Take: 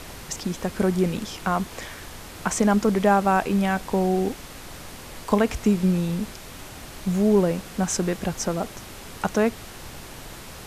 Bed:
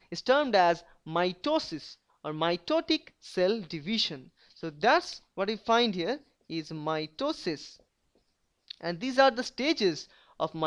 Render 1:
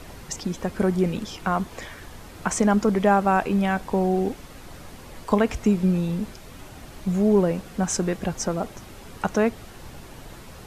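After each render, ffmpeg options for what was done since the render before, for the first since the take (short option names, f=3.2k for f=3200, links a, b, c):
-af "afftdn=nr=7:nf=-41"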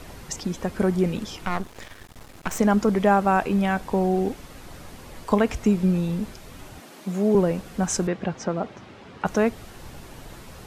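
-filter_complex "[0:a]asettb=1/sr,asplit=3[a][b][c];[a]atrim=end=1.454[d];[b]atrim=start=1.45:end=2.59,asetpts=PTS-STARTPTS,afade=t=in:d=0.004:c=qsin,afade=t=out:st=1.136:d=0.004:c=qsin,aeval=exprs='max(val(0),0)':c=same[e];[c]atrim=start=2.586[f];[d][e]acrossfade=d=0.004:c1=hsin:c2=qsin[g];[g][f]acrossfade=d=0.004:c1=qsin:c2=hsin,asettb=1/sr,asplit=3[h][i][j];[h]atrim=end=6.804[k];[i]atrim=start=6.8:end=7.35,asetpts=PTS-STARTPTS,afade=t=in:d=0.004:c=qsin,afade=t=out:st=0.546:d=0.004:c=qsin,highpass=f=200:w=0.5412,highpass=f=200:w=1.3066[l];[j]atrim=start=7.346[m];[k][l]acrossfade=d=0.004:c1=hsin:c2=qsin[n];[n][m]acrossfade=d=0.004:c1=qsin:c2=hsin,asettb=1/sr,asplit=3[o][p][q];[o]atrim=end=8.074[r];[p]atrim=start=8.07:end=9.26,asetpts=PTS-STARTPTS,afade=t=in:d=0.004:c=qsin,afade=t=out:st=1.186:d=0.004:c=qsin,highpass=110,lowpass=3.6k[s];[q]atrim=start=9.256[t];[r][s]acrossfade=d=0.004:c1=hsin:c2=qsin[u];[u][t]acrossfade=d=0.004:c1=qsin:c2=hsin"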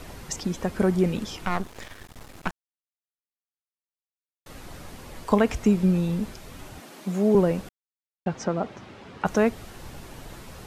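-filter_complex "[0:a]asplit=5[a][b][c][d][e];[a]atrim=end=2.51,asetpts=PTS-STARTPTS,afade=t=out:st=2.506:d=0.004:c=hsin[f];[b]atrim=start=2.51:end=4.46,asetpts=PTS-STARTPTS,volume=0[g];[c]atrim=start=4.46:end=7.69,asetpts=PTS-STARTPTS,afade=t=in:d=0.004:c=hsin,afade=t=out:st=3.226:d=0.004:c=hsin[h];[d]atrim=start=7.69:end=8.26,asetpts=PTS-STARTPTS,volume=0[i];[e]atrim=start=8.26,asetpts=PTS-STARTPTS,afade=t=in:d=0.004:c=hsin[j];[f][g][h][i][j]concat=n=5:v=0:a=1"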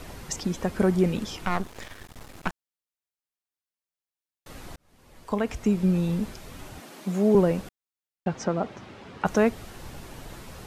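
-filter_complex "[0:a]asplit=2[a][b];[a]atrim=end=4.76,asetpts=PTS-STARTPTS,afade=t=out:st=4.756:d=0.004:c=hsin[c];[b]atrim=start=4.76,asetpts=PTS-STARTPTS,afade=t=in:d=1.34[d];[c][d]concat=n=2:v=0:a=1"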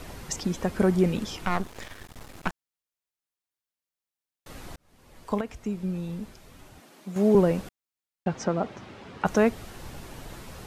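-filter_complex "[0:a]asplit=3[a][b][c];[a]atrim=end=5.412[d];[b]atrim=start=5.408:end=7.162,asetpts=PTS-STARTPTS,volume=-8dB[e];[c]atrim=start=7.158[f];[d][e]acrossfade=d=0.004:c1=hsin:c2=hsin[g];[g][f]acrossfade=d=0.004:c1=hsin:c2=hsin"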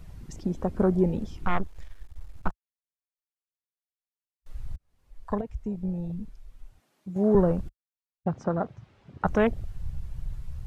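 -af "afwtdn=0.0282,asubboost=boost=4:cutoff=110"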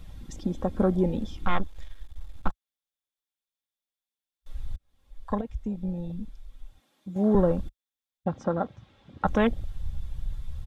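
-af "equalizer=f=3.5k:t=o:w=0.23:g=10.5,aecho=1:1:3.7:0.37"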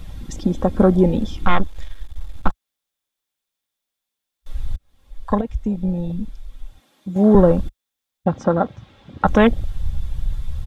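-af "volume=9.5dB,alimiter=limit=-1dB:level=0:latency=1"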